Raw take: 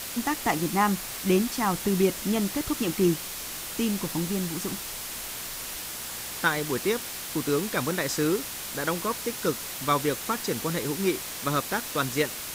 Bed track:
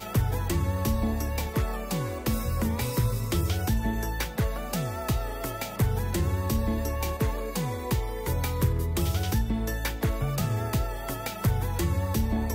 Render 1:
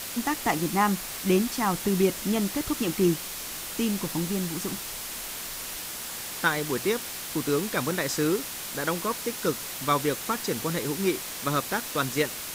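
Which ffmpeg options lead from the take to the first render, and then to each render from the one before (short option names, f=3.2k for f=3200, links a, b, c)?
-af "bandreject=f=60:t=h:w=4,bandreject=f=120:t=h:w=4"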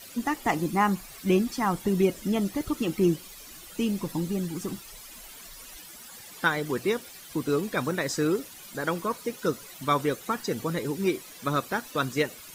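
-af "afftdn=nr=14:nf=-36"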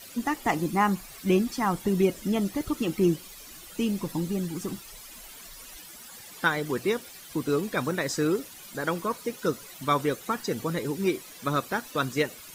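-af anull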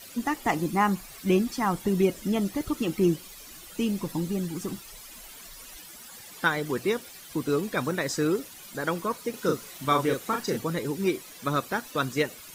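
-filter_complex "[0:a]asettb=1/sr,asplit=3[a][b][c];[a]atrim=end=9.304[d];[b]atrim=start=9.3:end=10.58,asetpts=PTS-STARTPTS,afade=t=in:d=0.004:c=qsin,afade=t=out:st=1.276:d=0.004:c=qsin,asplit=2[e][f];[f]adelay=37,volume=-4dB[g];[e][g]amix=inputs=2:normalize=0,atrim=end_sample=56448[h];[c]atrim=start=10.576[i];[d][h]acrossfade=d=0.004:c1=hsin:c2=qsin[j];[j][i]acrossfade=d=0.004:c1=qsin:c2=hsin"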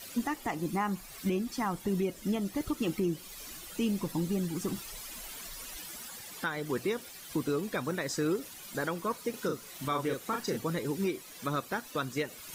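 -af "areverse,acompressor=mode=upward:threshold=-38dB:ratio=2.5,areverse,alimiter=limit=-21.5dB:level=0:latency=1:release=438"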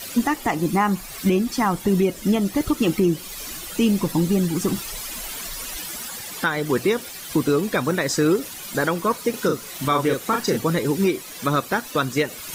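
-af "volume=11.5dB"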